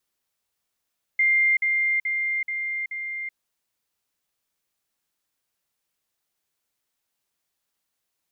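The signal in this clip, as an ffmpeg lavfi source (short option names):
-f lavfi -i "aevalsrc='pow(10,(-16.5-3*floor(t/0.43))/20)*sin(2*PI*2100*t)*clip(min(mod(t,0.43),0.38-mod(t,0.43))/0.005,0,1)':d=2.15:s=44100"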